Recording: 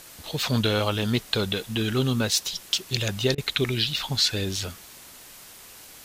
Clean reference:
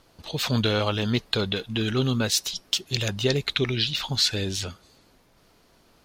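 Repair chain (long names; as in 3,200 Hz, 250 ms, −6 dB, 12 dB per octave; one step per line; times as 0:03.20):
repair the gap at 0:03.35, 29 ms
broadband denoise 13 dB, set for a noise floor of −46 dBFS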